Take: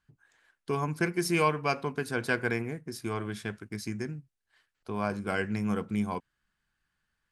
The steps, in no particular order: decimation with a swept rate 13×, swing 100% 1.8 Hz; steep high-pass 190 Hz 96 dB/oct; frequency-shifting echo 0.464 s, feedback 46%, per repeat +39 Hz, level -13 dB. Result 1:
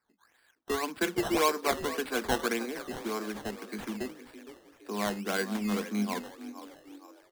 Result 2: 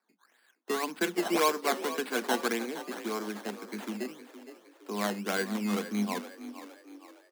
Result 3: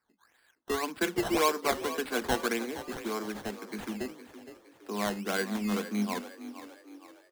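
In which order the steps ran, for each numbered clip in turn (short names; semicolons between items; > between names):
steep high-pass > frequency-shifting echo > decimation with a swept rate; decimation with a swept rate > steep high-pass > frequency-shifting echo; steep high-pass > decimation with a swept rate > frequency-shifting echo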